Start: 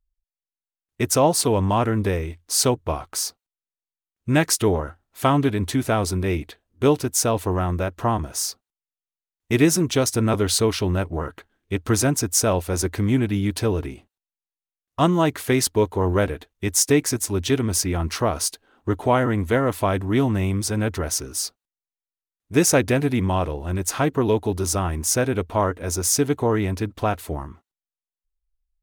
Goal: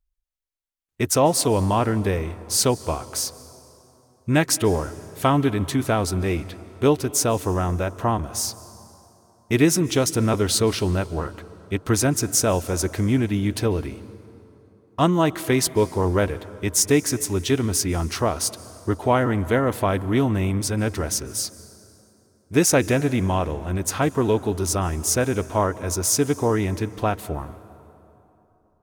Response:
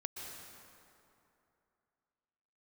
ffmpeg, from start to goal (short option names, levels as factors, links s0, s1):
-filter_complex "[0:a]asplit=2[s0][s1];[1:a]atrim=start_sample=2205,asetrate=37485,aresample=44100[s2];[s1][s2]afir=irnorm=-1:irlink=0,volume=0.211[s3];[s0][s3]amix=inputs=2:normalize=0,volume=0.841"